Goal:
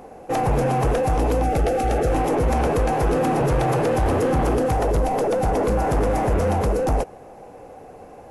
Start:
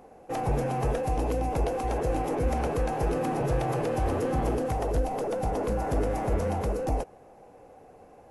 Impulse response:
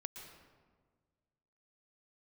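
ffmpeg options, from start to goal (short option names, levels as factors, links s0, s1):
-filter_complex "[0:a]aeval=exprs='0.178*sin(PI/2*2*val(0)/0.178)':c=same,asettb=1/sr,asplit=3[s0][s1][s2];[s0]atrim=end=1.434[s3];[s1]atrim=start=1.43:end=2.12,asetpts=PTS-STARTPTS,afade=t=in:d=0.004:c=qsin,afade=t=out:st=0.686:d=0.004:c=qsin,asuperstop=centerf=1000:order=8:qfactor=3.8[s4];[s2]atrim=start=2.116[s5];[s3][s4]acrossfade=d=0.004:c1=hsin:c2=qsin[s6];[s6][s5]acrossfade=d=0.004:c1=qsin:c2=hsin"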